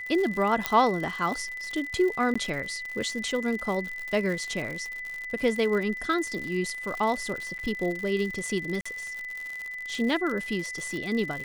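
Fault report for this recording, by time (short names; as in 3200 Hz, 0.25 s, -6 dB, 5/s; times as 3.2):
crackle 110/s -32 dBFS
tone 2000 Hz -34 dBFS
0.66 pop -7 dBFS
2.34–2.35 gap 15 ms
7.58–7.59 gap 9 ms
8.81–8.86 gap 45 ms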